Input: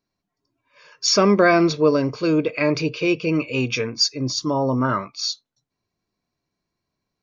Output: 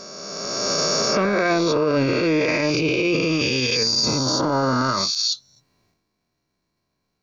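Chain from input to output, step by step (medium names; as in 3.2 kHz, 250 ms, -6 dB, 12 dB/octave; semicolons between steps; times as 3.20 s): reverse spectral sustain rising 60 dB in 2.18 s; transient shaper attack -8 dB, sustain +10 dB; peak limiter -13 dBFS, peak gain reduction 10.5 dB; trim +1 dB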